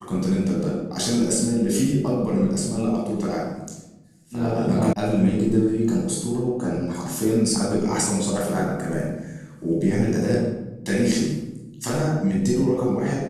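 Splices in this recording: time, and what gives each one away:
4.93 s: sound stops dead

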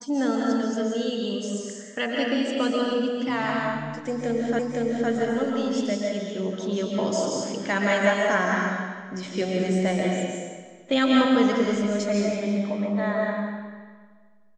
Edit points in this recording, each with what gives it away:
4.59 s: repeat of the last 0.51 s

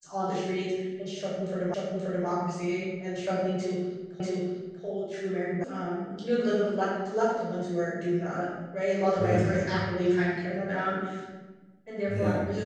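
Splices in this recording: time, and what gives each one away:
1.74 s: repeat of the last 0.53 s
4.20 s: repeat of the last 0.64 s
5.64 s: sound stops dead

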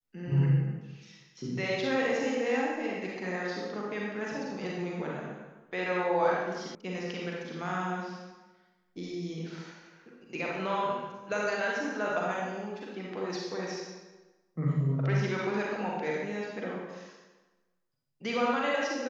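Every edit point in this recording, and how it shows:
6.75 s: sound stops dead

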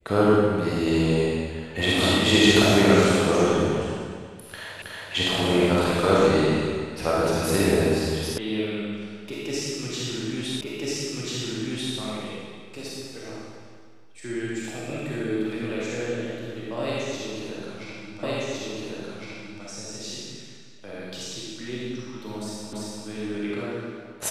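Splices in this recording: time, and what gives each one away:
4.82 s: repeat of the last 0.32 s
8.38 s: sound stops dead
10.61 s: repeat of the last 1.34 s
18.23 s: repeat of the last 1.41 s
22.73 s: repeat of the last 0.34 s

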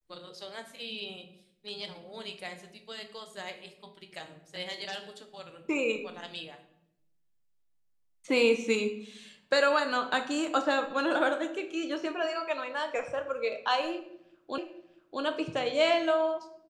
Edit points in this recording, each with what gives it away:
14.58 s: repeat of the last 0.64 s

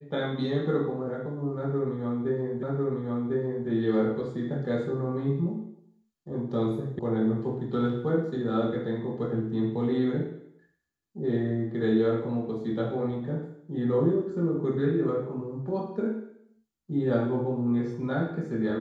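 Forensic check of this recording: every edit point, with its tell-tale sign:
2.63 s: repeat of the last 1.05 s
6.99 s: sound stops dead

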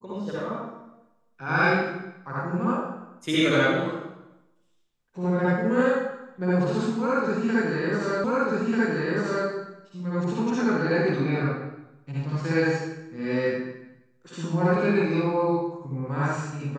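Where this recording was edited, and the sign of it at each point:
8.24 s: repeat of the last 1.24 s

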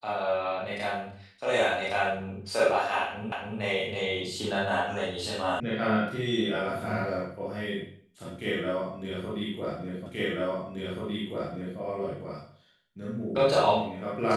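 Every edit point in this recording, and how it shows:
3.32 s: repeat of the last 0.28 s
5.60 s: sound stops dead
10.06 s: repeat of the last 1.73 s

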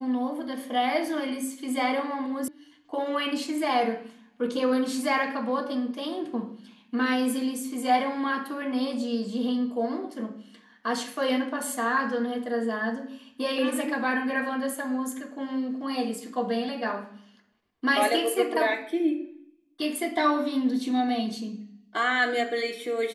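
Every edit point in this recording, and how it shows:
2.48 s: sound stops dead

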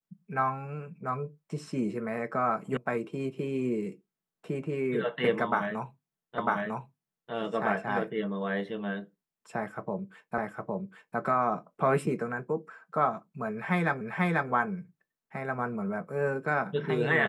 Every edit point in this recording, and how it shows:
2.77 s: sound stops dead
6.38 s: repeat of the last 0.95 s
10.38 s: repeat of the last 0.81 s
14.01 s: repeat of the last 0.49 s

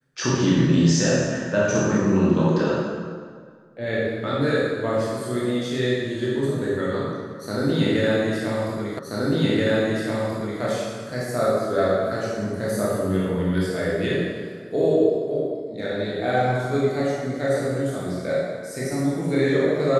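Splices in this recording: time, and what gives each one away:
8.99 s: repeat of the last 1.63 s

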